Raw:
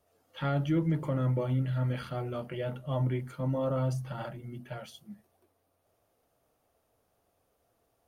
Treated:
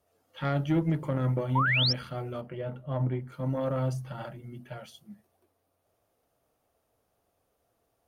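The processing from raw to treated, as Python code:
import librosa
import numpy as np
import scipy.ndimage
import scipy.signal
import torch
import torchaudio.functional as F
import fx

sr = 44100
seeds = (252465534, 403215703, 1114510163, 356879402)

y = fx.high_shelf(x, sr, hz=2600.0, db=-12.0, at=(2.41, 3.32))
y = fx.cheby_harmonics(y, sr, harmonics=(3,), levels_db=(-18,), full_scale_db=-19.0)
y = fx.spec_paint(y, sr, seeds[0], shape='rise', start_s=1.55, length_s=0.38, low_hz=860.0, high_hz=5700.0, level_db=-29.0)
y = F.gain(torch.from_numpy(y), 3.0).numpy()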